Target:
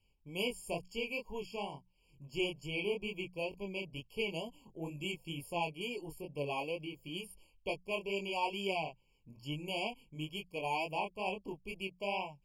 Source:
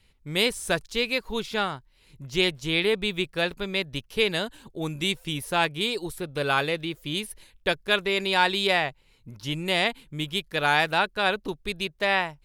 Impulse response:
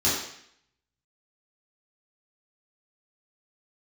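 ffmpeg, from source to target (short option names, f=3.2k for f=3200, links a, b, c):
-af "flanger=delay=20:depth=5.8:speed=2.2,bandreject=f=60:t=h:w=6,bandreject=f=120:t=h:w=6,bandreject=f=180:t=h:w=6,afftfilt=real='re*eq(mod(floor(b*sr/1024/1100),2),0)':imag='im*eq(mod(floor(b*sr/1024/1100),2),0)':win_size=1024:overlap=0.75,volume=-8dB"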